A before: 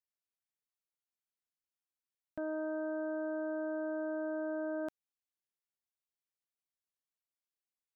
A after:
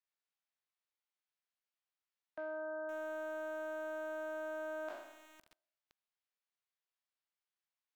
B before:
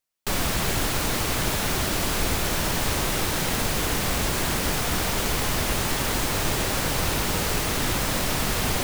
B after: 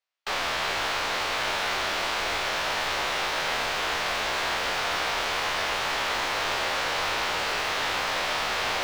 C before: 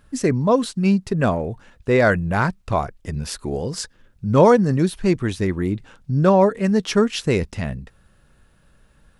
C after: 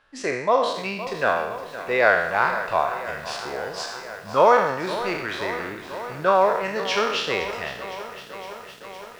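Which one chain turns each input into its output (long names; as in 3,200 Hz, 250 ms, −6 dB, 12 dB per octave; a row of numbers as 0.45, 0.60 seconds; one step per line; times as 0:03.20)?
peak hold with a decay on every bin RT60 0.82 s
three-way crossover with the lows and the highs turned down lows −21 dB, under 510 Hz, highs −22 dB, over 5,100 Hz
feedback echo at a low word length 512 ms, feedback 80%, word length 7 bits, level −13.5 dB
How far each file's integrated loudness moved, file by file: −4.5, −2.0, −3.0 LU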